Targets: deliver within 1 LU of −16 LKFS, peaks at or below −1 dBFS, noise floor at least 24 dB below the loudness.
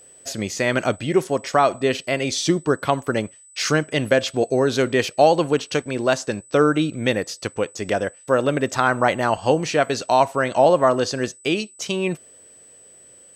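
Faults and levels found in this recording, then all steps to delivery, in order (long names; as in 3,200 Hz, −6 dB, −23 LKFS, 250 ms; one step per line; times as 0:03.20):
interfering tone 8,000 Hz; level of the tone −46 dBFS; integrated loudness −21.0 LKFS; sample peak −4.0 dBFS; target loudness −16.0 LKFS
→ notch filter 8,000 Hz, Q 30
level +5 dB
brickwall limiter −1 dBFS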